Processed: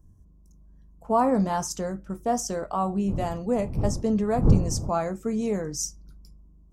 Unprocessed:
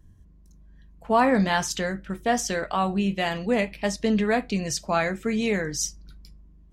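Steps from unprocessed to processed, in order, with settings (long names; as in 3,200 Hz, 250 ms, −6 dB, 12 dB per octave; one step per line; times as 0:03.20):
0:03.07–0:04.88: wind on the microphone 140 Hz −26 dBFS
flat-topped bell 2,600 Hz −15 dB
level −1.5 dB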